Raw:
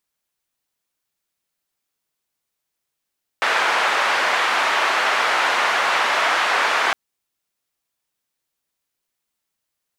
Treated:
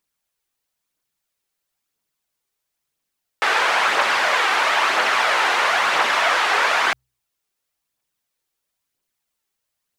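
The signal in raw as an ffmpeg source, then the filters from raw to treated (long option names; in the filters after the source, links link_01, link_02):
-f lavfi -i "anoisesrc=color=white:duration=3.51:sample_rate=44100:seed=1,highpass=frequency=810,lowpass=frequency=1600,volume=-0.5dB"
-af "bandreject=frequency=63.13:width_type=h:width=4,bandreject=frequency=126.26:width_type=h:width=4,aphaser=in_gain=1:out_gain=1:delay=2.7:decay=0.35:speed=1:type=triangular"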